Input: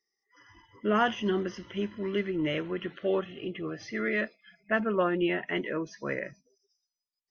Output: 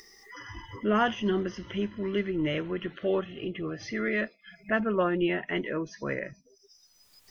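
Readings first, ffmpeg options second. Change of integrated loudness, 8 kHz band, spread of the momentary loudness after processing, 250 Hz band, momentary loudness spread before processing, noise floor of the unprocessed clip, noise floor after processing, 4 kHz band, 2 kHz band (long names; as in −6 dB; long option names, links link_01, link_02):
+0.5 dB, can't be measured, 15 LU, +1.5 dB, 10 LU, below −85 dBFS, −63 dBFS, +0.5 dB, 0.0 dB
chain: -af "acompressor=mode=upward:threshold=-32dB:ratio=2.5,lowshelf=frequency=88:gain=11"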